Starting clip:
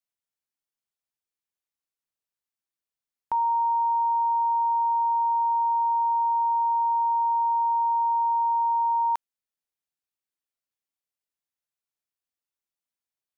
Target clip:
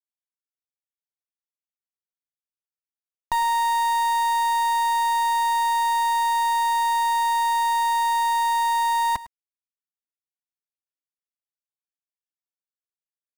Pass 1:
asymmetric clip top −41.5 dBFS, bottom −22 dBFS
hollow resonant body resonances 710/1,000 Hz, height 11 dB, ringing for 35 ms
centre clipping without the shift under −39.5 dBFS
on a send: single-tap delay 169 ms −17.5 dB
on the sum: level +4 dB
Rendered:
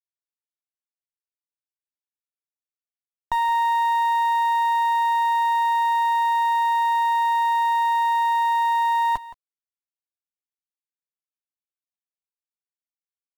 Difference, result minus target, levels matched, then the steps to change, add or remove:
echo 65 ms late; centre clipping without the shift: distortion −14 dB
change: centre clipping without the shift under −30 dBFS
change: single-tap delay 104 ms −17.5 dB

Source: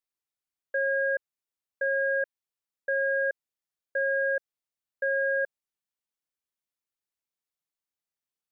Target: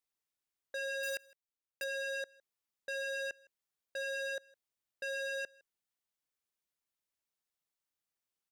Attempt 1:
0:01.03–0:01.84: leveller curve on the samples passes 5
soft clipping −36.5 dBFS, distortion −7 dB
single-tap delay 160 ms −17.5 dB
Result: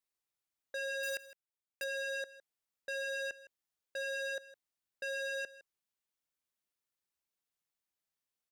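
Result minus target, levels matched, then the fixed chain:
echo-to-direct +8 dB
0:01.03–0:01.84: leveller curve on the samples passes 5
soft clipping −36.5 dBFS, distortion −7 dB
single-tap delay 160 ms −25.5 dB

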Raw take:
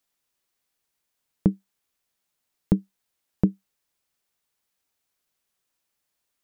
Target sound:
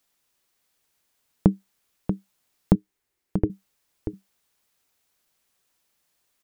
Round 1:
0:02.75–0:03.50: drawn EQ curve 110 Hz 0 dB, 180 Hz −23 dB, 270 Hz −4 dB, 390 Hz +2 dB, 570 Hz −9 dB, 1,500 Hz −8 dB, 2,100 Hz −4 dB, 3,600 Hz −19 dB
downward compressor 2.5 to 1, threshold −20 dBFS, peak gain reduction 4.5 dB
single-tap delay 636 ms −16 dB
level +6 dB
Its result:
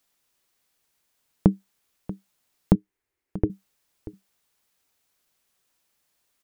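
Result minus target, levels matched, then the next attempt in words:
echo-to-direct −8 dB
0:02.75–0:03.50: drawn EQ curve 110 Hz 0 dB, 180 Hz −23 dB, 270 Hz −4 dB, 390 Hz +2 dB, 570 Hz −9 dB, 1,500 Hz −8 dB, 2,100 Hz −4 dB, 3,600 Hz −19 dB
downward compressor 2.5 to 1, threshold −20 dBFS, peak gain reduction 4.5 dB
single-tap delay 636 ms −8 dB
level +6 dB

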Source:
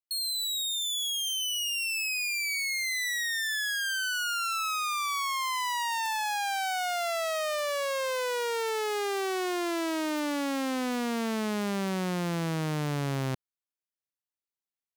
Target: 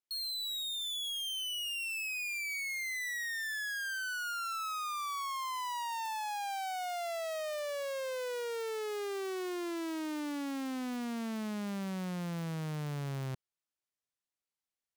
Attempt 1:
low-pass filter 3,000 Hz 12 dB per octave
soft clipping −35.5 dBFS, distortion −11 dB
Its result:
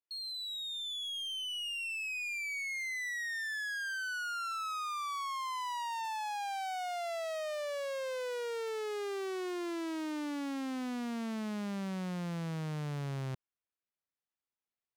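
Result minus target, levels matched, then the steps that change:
8,000 Hz band −4.0 dB
change: low-pass filter 11,000 Hz 12 dB per octave

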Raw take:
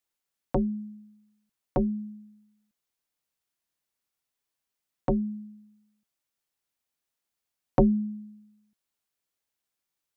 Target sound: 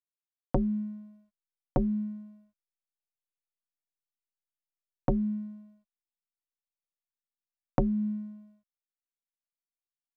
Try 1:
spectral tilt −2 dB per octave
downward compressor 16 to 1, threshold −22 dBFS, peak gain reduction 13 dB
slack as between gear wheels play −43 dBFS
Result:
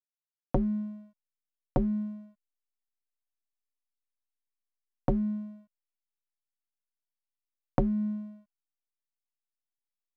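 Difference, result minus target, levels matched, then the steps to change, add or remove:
slack as between gear wheels: distortion +9 dB
change: slack as between gear wheels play −53.5 dBFS

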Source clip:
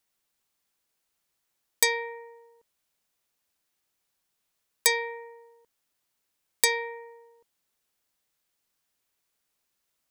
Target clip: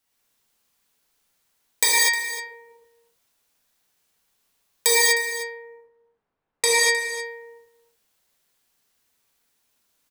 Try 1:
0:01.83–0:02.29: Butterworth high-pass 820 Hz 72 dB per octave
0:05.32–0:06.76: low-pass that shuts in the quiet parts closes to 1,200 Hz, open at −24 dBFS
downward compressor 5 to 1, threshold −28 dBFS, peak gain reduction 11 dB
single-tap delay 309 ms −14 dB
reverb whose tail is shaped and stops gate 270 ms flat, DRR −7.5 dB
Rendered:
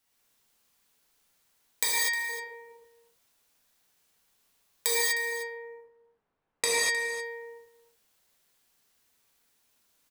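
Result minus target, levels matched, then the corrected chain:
downward compressor: peak gain reduction +11 dB
0:01.83–0:02.29: Butterworth high-pass 820 Hz 72 dB per octave
0:05.32–0:06.76: low-pass that shuts in the quiet parts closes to 1,200 Hz, open at −24 dBFS
single-tap delay 309 ms −14 dB
reverb whose tail is shaped and stops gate 270 ms flat, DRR −7.5 dB

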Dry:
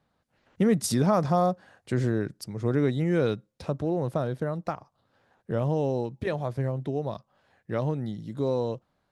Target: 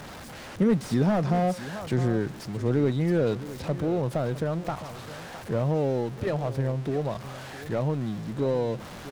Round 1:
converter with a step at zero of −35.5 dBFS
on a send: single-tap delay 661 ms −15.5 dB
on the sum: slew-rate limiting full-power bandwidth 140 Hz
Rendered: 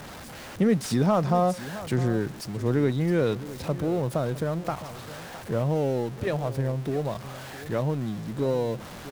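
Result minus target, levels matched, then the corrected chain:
slew-rate limiting: distortion −11 dB
converter with a step at zero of −35.5 dBFS
on a send: single-tap delay 661 ms −15.5 dB
on the sum: slew-rate limiting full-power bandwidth 52 Hz

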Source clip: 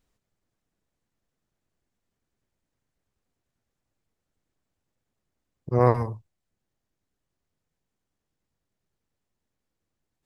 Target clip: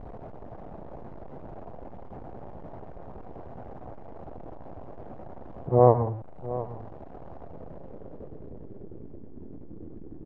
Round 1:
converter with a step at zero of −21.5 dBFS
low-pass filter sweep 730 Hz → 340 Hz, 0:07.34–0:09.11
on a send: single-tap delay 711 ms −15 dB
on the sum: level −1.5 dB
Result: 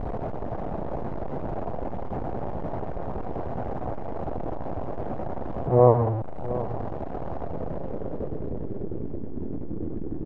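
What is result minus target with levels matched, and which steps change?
converter with a step at zero: distortion +10 dB
change: converter with a step at zero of −33 dBFS

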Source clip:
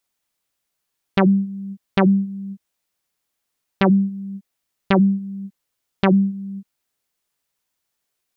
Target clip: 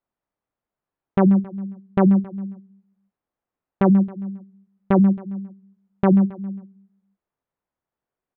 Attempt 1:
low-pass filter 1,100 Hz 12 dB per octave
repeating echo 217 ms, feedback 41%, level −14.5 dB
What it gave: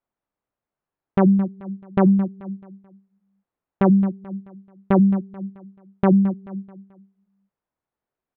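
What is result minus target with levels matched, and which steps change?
echo 82 ms late
change: repeating echo 135 ms, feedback 41%, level −14.5 dB

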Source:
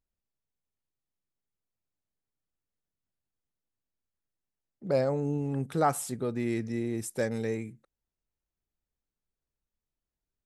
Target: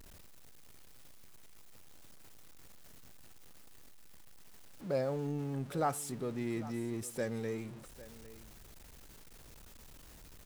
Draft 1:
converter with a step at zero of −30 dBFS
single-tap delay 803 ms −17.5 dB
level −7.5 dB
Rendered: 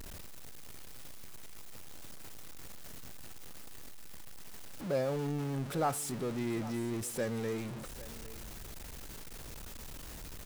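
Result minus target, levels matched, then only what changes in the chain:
converter with a step at zero: distortion +7 dB
change: converter with a step at zero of −39 dBFS

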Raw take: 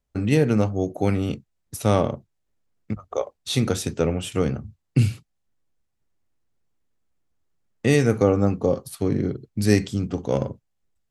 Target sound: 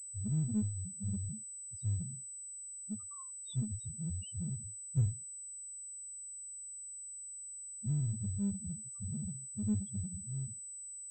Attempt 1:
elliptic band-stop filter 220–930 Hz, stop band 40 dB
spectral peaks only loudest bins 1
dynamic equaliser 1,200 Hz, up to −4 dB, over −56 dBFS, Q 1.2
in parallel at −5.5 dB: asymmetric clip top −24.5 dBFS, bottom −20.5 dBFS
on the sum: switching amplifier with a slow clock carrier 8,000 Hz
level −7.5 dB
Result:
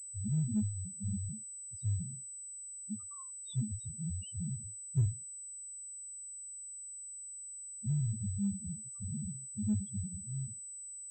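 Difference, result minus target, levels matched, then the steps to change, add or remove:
asymmetric clip: distortion −7 dB
change: asymmetric clip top −35 dBFS, bottom −20.5 dBFS

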